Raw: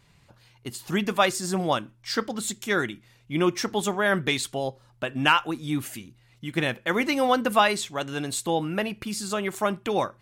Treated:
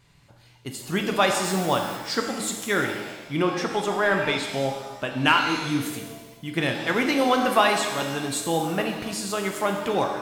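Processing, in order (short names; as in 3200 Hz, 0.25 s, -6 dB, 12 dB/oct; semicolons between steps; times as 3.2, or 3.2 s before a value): 1.43–1.95 added noise white -46 dBFS; 3.42–4.48 overdrive pedal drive 9 dB, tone 1500 Hz, clips at -10 dBFS; shimmer reverb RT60 1.2 s, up +7 st, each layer -8 dB, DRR 3.5 dB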